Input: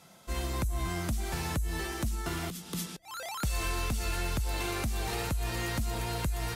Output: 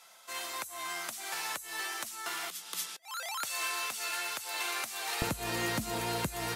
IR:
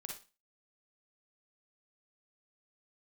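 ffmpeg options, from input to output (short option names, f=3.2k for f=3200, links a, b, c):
-af "asetnsamples=n=441:p=0,asendcmd='5.22 highpass f 170',highpass=910,volume=2.5dB"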